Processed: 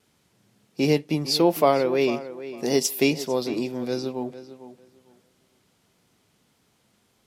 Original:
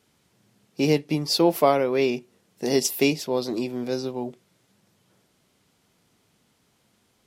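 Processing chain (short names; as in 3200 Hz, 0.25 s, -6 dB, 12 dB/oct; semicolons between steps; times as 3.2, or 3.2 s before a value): wow and flutter 29 cents; tape echo 0.452 s, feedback 21%, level -13 dB, low-pass 3300 Hz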